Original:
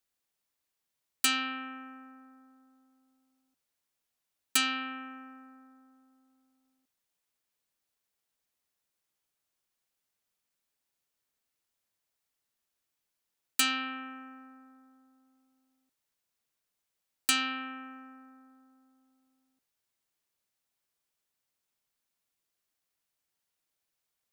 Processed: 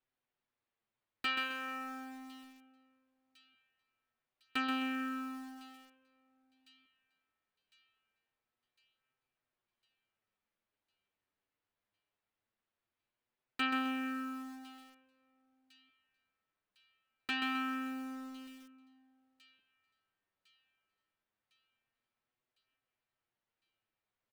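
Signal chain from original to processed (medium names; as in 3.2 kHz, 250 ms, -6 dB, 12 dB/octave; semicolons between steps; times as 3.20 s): in parallel at -2.5 dB: compression 6:1, threshold -42 dBFS, peak gain reduction 18.5 dB; on the sum: distance through air 360 m; on a send: feedback echo behind a high-pass 1055 ms, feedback 54%, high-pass 4.4 kHz, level -14 dB; on the sum: flange 0.22 Hz, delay 7.7 ms, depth 2.9 ms, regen -4%; delay 440 ms -23.5 dB; bit-crushed delay 130 ms, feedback 35%, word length 9-bit, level -5.5 dB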